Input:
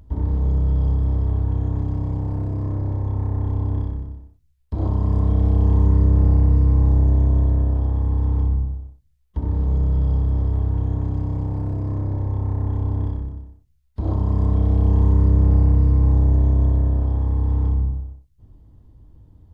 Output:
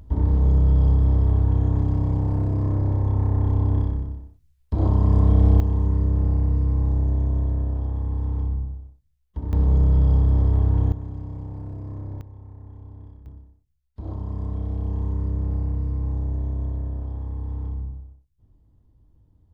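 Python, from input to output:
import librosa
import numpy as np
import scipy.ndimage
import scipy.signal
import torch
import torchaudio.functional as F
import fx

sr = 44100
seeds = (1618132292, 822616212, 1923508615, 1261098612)

y = fx.gain(x, sr, db=fx.steps((0.0, 2.0), (5.6, -5.5), (9.53, 2.0), (10.92, -9.5), (12.21, -19.0), (13.26, -10.0)))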